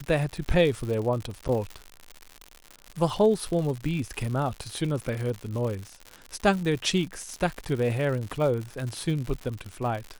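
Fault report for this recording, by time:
crackle 120/s -31 dBFS
1.48–1.49 gap 8.9 ms

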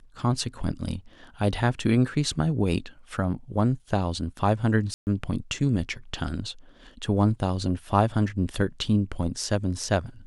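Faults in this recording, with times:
4.94–5.07 gap 0.129 s

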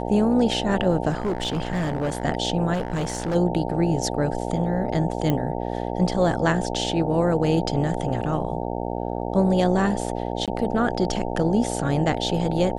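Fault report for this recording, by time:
buzz 60 Hz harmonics 15 -28 dBFS
1.09–2.25 clipped -20.5 dBFS
2.73–3.36 clipped -21.5 dBFS
5.3 pop -11 dBFS
10.46–10.48 gap 17 ms

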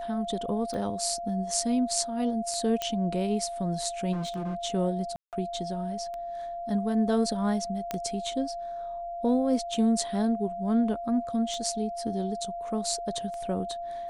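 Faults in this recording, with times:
tick 33 1/3 rpm -26 dBFS
tone 690 Hz -33 dBFS
2.82 pop -14 dBFS
4.12–4.56 clipped -28.5 dBFS
5.16–5.33 gap 0.168 s
7.91 pop -16 dBFS

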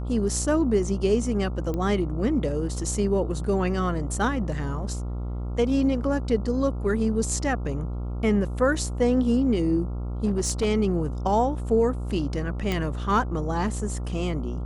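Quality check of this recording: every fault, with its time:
buzz 60 Hz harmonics 23 -30 dBFS
1.74 pop -18 dBFS
10.25–10.66 clipped -18.5 dBFS
12.72 pop -13 dBFS

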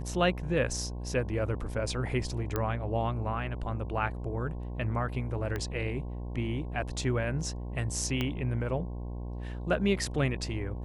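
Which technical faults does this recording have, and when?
buzz 60 Hz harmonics 18 -37 dBFS
2.56 pop -16 dBFS
5.56 pop -20 dBFS
8.21 pop -17 dBFS

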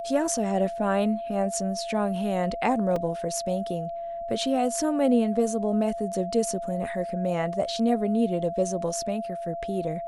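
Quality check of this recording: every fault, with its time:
tone 680 Hz -31 dBFS
2.96 gap 3.2 ms

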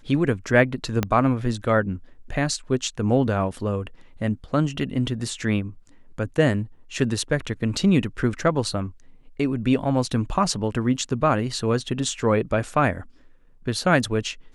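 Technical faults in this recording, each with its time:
1.03 pop -8 dBFS

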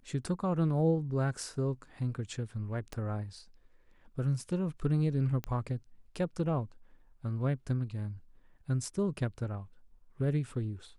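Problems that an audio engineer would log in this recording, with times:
2.93 pop -25 dBFS
5.44 pop -22 dBFS

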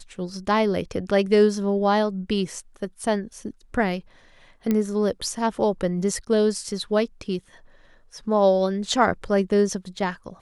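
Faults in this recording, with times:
4.71 pop -11 dBFS

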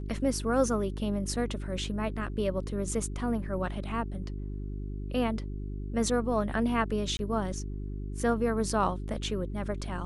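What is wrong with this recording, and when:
hum 50 Hz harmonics 8 -36 dBFS
7.17–7.19 gap 20 ms

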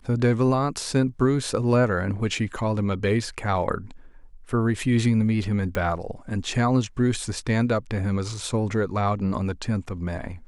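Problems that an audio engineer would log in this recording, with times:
5.75 pop -15 dBFS

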